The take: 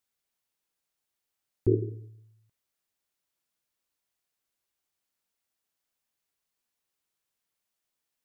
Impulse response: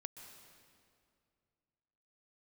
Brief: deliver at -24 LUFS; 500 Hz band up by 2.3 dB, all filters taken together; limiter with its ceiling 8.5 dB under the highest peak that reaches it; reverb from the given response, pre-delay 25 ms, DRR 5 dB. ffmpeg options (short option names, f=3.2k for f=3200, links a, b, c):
-filter_complex "[0:a]equalizer=f=500:t=o:g=3.5,alimiter=limit=-18dB:level=0:latency=1,asplit=2[a][b];[1:a]atrim=start_sample=2205,adelay=25[c];[b][c]afir=irnorm=-1:irlink=0,volume=-0.5dB[d];[a][d]amix=inputs=2:normalize=0,volume=10.5dB"